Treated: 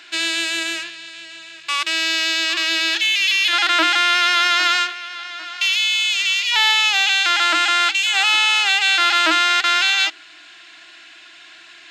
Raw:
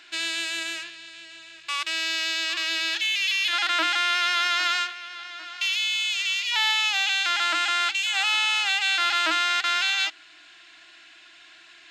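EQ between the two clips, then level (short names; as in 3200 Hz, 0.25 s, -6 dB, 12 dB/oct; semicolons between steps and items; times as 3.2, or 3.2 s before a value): dynamic EQ 380 Hz, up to +5 dB, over -50 dBFS, Q 1.7; HPF 110 Hz 24 dB/oct; +7.0 dB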